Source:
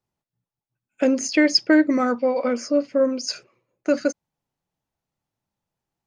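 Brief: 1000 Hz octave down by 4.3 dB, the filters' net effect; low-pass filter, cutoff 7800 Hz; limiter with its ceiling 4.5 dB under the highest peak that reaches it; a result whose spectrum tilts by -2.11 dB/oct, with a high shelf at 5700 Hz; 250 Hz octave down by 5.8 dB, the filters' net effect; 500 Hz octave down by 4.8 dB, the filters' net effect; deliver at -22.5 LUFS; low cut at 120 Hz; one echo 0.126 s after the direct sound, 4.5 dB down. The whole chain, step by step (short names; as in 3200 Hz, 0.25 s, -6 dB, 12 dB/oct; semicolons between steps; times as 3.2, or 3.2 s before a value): HPF 120 Hz; LPF 7800 Hz; bell 250 Hz -5.5 dB; bell 500 Hz -3 dB; bell 1000 Hz -4.5 dB; high shelf 5700 Hz -8.5 dB; limiter -16 dBFS; echo 0.126 s -4.5 dB; gain +4 dB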